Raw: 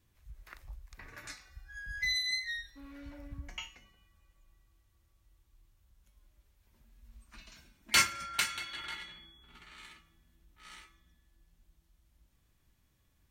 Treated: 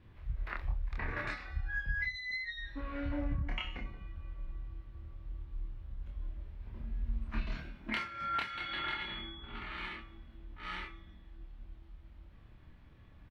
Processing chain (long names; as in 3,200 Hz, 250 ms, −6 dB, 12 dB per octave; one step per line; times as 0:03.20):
0:03.64–0:07.55: low-shelf EQ 370 Hz +7.5 dB
downward compressor 20 to 1, threshold −44 dBFS, peak gain reduction 24.5 dB
high-frequency loss of the air 410 metres
double-tracking delay 27 ms −2 dB
level +13.5 dB